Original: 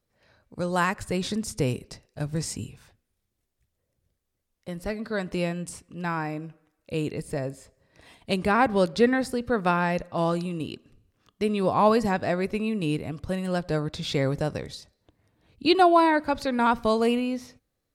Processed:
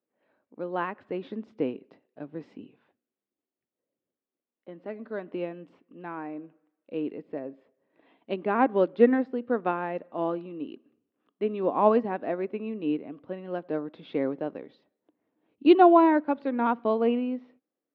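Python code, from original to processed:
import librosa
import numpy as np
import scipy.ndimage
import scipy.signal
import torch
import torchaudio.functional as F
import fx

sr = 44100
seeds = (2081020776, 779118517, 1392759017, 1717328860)

y = scipy.signal.sosfilt(scipy.signal.cheby1(3, 1.0, [270.0, 3200.0], 'bandpass', fs=sr, output='sos'), x)
y = fx.tilt_eq(y, sr, slope=-3.5)
y = fx.upward_expand(y, sr, threshold_db=-28.0, expansion=1.5)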